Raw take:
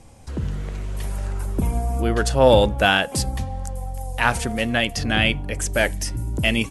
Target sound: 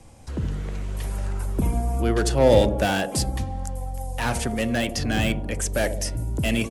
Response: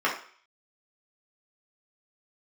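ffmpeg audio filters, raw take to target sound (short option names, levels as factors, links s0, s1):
-filter_complex "[0:a]acrossover=split=220|610|5100[s0][s1][s2][s3];[s1]aecho=1:1:72|144|216|288|360|432|504|576:0.501|0.301|0.18|0.108|0.065|0.039|0.0234|0.014[s4];[s2]volume=17.8,asoftclip=hard,volume=0.0562[s5];[s0][s4][s5][s3]amix=inputs=4:normalize=0,volume=0.891"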